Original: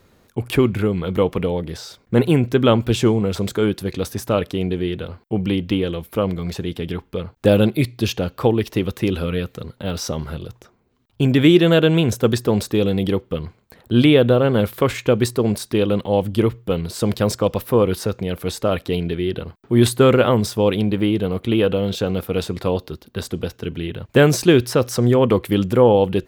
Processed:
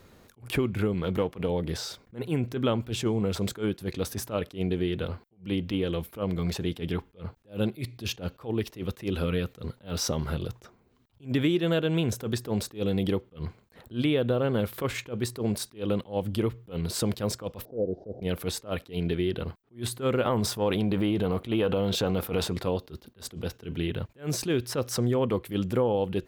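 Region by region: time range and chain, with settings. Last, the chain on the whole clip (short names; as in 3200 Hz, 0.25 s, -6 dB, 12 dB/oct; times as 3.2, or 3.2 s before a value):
0.94–1.49 half-wave gain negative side -3 dB + HPF 50 Hz
17.65–18.22 delta modulation 32 kbps, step -30.5 dBFS + elliptic low-pass 680 Hz + low shelf 200 Hz -11.5 dB
20.25–22.53 dynamic EQ 920 Hz, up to +6 dB, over -32 dBFS, Q 1.1 + transient shaper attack -4 dB, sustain +5 dB
whole clip: compressor 4:1, threshold -24 dBFS; attack slew limiter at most 240 dB/s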